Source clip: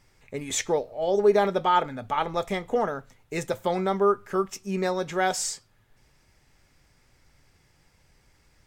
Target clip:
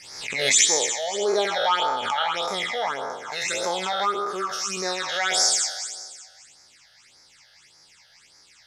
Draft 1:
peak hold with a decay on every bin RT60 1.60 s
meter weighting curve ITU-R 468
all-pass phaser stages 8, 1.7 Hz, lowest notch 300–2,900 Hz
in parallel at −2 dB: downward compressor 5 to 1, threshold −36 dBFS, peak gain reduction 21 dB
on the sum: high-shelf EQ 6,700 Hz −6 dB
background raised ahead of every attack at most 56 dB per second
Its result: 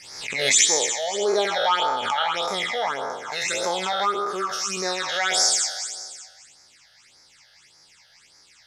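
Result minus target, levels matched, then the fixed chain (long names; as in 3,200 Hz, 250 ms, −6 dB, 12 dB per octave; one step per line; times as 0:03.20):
downward compressor: peak gain reduction −9 dB
peak hold with a decay on every bin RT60 1.60 s
meter weighting curve ITU-R 468
all-pass phaser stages 8, 1.7 Hz, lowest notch 300–2,900 Hz
in parallel at −2 dB: downward compressor 5 to 1, threshold −47.5 dBFS, peak gain reduction 30.5 dB
on the sum: high-shelf EQ 6,700 Hz −6 dB
background raised ahead of every attack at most 56 dB per second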